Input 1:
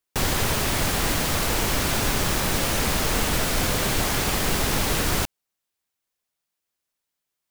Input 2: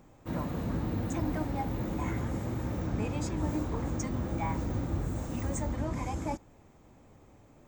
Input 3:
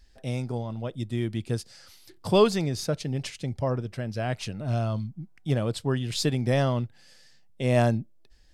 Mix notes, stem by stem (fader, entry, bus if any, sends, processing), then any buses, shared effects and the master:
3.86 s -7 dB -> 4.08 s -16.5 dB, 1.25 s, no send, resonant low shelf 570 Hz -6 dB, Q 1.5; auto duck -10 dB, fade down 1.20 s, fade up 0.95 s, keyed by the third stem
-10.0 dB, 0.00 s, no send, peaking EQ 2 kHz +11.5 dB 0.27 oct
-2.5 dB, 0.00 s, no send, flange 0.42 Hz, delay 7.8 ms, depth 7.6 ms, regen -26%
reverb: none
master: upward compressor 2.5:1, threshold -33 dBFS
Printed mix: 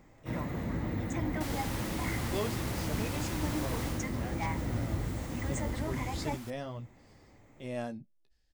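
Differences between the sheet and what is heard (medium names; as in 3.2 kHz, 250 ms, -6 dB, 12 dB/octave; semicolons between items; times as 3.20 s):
stem 2 -10.0 dB -> -2.0 dB; stem 3 -2.5 dB -> -11.0 dB; master: missing upward compressor 2.5:1, threshold -33 dBFS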